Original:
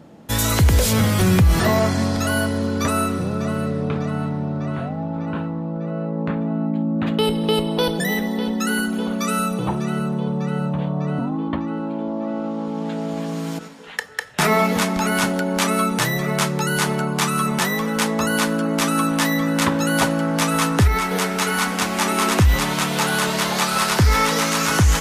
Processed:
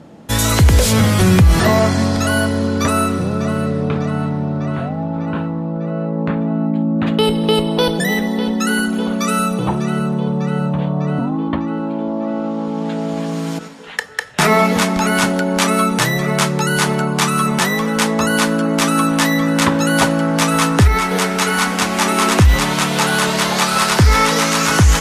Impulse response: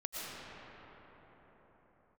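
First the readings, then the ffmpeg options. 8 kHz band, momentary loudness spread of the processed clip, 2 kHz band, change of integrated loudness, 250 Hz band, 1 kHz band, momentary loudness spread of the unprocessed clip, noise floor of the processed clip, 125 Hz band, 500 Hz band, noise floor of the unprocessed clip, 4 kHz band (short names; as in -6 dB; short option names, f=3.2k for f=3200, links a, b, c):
+4.0 dB, 9 LU, +4.5 dB, +4.5 dB, +4.5 dB, +4.5 dB, 9 LU, -22 dBFS, +4.5 dB, +4.5 dB, -27 dBFS, +4.5 dB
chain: -af "lowpass=12k,volume=4.5dB"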